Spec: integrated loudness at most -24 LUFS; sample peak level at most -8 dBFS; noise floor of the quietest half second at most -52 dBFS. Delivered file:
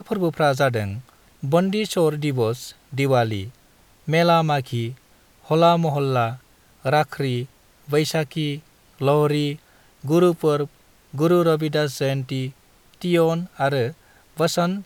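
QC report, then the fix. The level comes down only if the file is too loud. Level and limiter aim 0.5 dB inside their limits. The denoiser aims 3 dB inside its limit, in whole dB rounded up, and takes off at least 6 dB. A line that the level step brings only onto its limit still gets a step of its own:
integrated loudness -21.5 LUFS: fail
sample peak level -4.5 dBFS: fail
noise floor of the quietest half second -55 dBFS: OK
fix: gain -3 dB; limiter -8.5 dBFS

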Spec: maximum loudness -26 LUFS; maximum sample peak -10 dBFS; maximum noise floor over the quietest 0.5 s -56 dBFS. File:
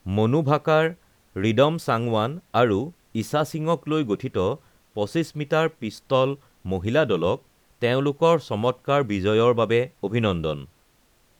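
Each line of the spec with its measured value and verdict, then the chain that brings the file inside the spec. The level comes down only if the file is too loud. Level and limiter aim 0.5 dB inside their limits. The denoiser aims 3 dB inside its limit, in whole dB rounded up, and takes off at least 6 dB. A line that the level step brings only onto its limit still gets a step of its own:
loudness -23.5 LUFS: fail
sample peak -5.0 dBFS: fail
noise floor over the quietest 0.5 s -61 dBFS: OK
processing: gain -3 dB; limiter -10.5 dBFS

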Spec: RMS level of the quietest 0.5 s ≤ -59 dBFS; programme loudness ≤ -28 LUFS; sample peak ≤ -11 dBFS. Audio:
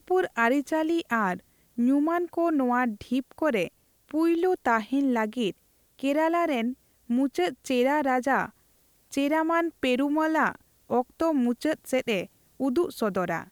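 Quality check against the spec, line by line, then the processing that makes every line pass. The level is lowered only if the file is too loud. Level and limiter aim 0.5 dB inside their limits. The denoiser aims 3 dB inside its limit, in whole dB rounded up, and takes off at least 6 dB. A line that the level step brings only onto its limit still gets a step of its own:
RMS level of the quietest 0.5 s -64 dBFS: OK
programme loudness -26.5 LUFS: fail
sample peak -10.0 dBFS: fail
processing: gain -2 dB

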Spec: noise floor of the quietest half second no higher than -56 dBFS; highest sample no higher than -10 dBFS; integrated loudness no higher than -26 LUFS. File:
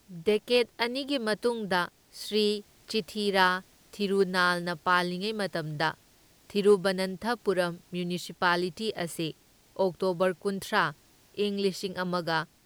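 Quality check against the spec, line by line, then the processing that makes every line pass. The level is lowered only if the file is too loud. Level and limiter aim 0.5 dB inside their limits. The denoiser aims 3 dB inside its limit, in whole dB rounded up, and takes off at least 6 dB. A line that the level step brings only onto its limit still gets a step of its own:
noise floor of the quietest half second -61 dBFS: OK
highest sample -8.0 dBFS: fail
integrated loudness -28.5 LUFS: OK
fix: limiter -10.5 dBFS

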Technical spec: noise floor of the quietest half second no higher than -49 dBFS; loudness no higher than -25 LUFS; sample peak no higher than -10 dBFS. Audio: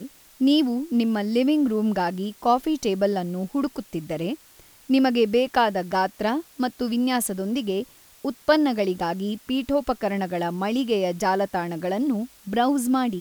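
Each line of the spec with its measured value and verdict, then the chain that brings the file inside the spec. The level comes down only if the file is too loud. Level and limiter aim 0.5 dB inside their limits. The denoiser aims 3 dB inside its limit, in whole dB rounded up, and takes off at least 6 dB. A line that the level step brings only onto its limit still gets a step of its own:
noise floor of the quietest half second -52 dBFS: OK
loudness -24.0 LUFS: fail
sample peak -7.0 dBFS: fail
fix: gain -1.5 dB; limiter -10.5 dBFS

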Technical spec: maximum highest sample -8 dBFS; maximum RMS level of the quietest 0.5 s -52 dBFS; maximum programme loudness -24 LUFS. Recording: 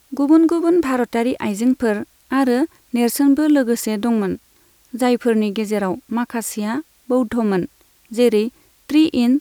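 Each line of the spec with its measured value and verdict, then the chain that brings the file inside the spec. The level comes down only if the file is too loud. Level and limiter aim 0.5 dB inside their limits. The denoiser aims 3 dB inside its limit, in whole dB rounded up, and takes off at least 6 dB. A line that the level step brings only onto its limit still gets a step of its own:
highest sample -3.0 dBFS: fail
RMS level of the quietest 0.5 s -55 dBFS: OK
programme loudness -18.5 LUFS: fail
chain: gain -6 dB

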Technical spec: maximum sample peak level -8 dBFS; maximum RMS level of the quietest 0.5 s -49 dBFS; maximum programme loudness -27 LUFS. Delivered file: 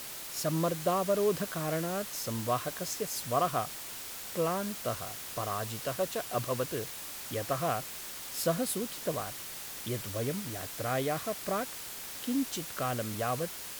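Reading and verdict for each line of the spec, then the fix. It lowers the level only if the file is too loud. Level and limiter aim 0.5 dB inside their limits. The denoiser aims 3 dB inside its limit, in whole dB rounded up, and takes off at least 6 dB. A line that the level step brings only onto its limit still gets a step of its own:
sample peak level -15.5 dBFS: OK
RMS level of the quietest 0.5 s -42 dBFS: fail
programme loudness -33.5 LUFS: OK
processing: denoiser 10 dB, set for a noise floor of -42 dBFS

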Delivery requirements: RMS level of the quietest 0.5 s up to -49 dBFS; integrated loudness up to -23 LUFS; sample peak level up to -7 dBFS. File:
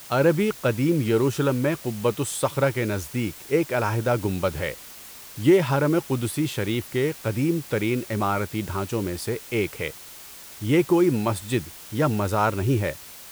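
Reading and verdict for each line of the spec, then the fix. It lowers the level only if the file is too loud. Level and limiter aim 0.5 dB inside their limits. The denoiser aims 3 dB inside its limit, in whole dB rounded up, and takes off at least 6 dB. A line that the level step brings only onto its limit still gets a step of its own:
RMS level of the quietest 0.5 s -43 dBFS: fail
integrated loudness -24.5 LUFS: OK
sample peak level -7.5 dBFS: OK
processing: denoiser 9 dB, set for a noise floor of -43 dBFS

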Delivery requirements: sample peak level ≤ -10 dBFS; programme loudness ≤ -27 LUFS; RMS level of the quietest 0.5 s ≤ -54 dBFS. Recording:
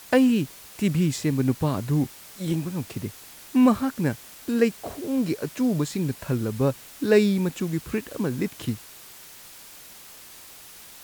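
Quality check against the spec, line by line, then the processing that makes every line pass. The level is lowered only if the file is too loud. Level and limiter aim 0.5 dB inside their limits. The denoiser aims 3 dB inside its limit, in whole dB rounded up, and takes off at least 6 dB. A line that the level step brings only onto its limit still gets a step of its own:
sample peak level -7.5 dBFS: fail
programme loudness -25.0 LUFS: fail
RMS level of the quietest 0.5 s -46 dBFS: fail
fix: denoiser 9 dB, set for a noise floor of -46 dBFS; gain -2.5 dB; limiter -10.5 dBFS

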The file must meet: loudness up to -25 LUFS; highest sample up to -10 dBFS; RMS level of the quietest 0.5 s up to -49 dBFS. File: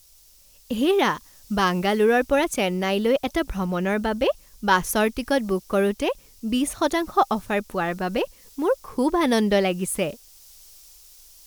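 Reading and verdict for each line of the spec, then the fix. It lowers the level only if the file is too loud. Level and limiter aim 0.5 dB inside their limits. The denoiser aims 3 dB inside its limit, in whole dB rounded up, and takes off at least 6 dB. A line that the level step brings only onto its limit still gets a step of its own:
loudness -23.5 LUFS: fail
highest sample -6.5 dBFS: fail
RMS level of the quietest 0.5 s -53 dBFS: OK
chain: gain -2 dB; limiter -10.5 dBFS

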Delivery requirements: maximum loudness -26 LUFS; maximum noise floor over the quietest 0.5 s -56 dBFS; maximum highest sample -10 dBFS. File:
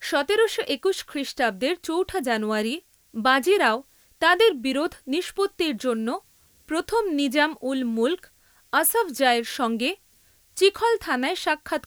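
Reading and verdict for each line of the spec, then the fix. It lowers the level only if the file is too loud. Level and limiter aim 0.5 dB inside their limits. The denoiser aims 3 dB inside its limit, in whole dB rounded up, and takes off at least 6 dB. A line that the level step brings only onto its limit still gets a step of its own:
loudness -23.5 LUFS: fail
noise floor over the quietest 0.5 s -59 dBFS: OK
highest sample -5.5 dBFS: fail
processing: gain -3 dB; limiter -10.5 dBFS

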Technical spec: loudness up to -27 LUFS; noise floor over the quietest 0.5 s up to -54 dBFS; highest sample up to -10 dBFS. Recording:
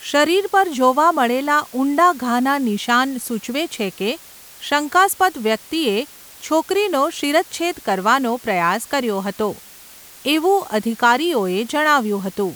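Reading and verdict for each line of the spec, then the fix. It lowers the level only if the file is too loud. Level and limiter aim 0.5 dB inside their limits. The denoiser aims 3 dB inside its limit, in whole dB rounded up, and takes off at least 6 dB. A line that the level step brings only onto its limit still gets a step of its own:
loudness -18.5 LUFS: fail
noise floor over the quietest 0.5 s -42 dBFS: fail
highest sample -3.5 dBFS: fail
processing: denoiser 6 dB, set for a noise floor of -42 dBFS; gain -9 dB

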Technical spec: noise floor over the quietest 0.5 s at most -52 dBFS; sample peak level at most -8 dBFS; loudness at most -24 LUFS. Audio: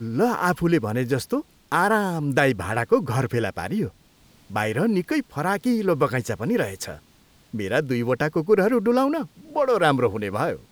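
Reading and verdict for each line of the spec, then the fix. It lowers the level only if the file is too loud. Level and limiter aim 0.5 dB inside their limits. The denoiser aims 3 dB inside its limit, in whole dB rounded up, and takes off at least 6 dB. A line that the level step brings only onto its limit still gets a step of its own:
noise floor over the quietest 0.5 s -56 dBFS: OK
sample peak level -6.0 dBFS: fail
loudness -23.0 LUFS: fail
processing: gain -1.5 dB; limiter -8.5 dBFS

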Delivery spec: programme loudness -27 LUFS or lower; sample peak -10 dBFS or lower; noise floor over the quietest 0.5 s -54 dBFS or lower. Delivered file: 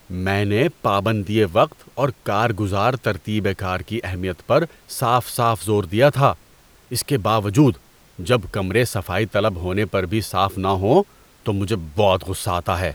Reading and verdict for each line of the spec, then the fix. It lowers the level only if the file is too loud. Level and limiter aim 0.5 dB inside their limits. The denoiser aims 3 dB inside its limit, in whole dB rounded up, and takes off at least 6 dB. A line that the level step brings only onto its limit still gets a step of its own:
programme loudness -20.5 LUFS: fail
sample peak -3.0 dBFS: fail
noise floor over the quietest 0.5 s -51 dBFS: fail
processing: gain -7 dB; limiter -10.5 dBFS

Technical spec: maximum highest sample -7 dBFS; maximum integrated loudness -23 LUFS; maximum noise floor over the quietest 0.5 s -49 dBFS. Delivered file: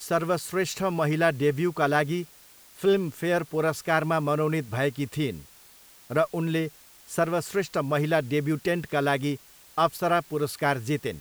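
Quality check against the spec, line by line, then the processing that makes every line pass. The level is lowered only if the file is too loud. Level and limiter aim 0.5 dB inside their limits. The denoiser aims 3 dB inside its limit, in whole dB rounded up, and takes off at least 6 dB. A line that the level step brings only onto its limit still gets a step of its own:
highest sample -8.5 dBFS: OK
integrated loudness -26.5 LUFS: OK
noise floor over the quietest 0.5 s -53 dBFS: OK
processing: none

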